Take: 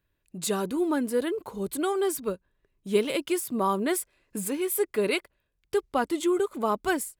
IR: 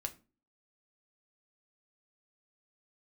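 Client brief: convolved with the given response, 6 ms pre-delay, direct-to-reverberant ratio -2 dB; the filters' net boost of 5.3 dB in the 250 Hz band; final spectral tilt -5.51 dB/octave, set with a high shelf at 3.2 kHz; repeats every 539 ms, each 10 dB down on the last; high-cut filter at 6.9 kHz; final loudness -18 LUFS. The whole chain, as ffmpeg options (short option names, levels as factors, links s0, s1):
-filter_complex "[0:a]lowpass=6900,equalizer=f=250:t=o:g=7.5,highshelf=f=3200:g=-5.5,aecho=1:1:539|1078|1617|2156:0.316|0.101|0.0324|0.0104,asplit=2[s0][s1];[1:a]atrim=start_sample=2205,adelay=6[s2];[s1][s2]afir=irnorm=-1:irlink=0,volume=1.41[s3];[s0][s3]amix=inputs=2:normalize=0,volume=1.41"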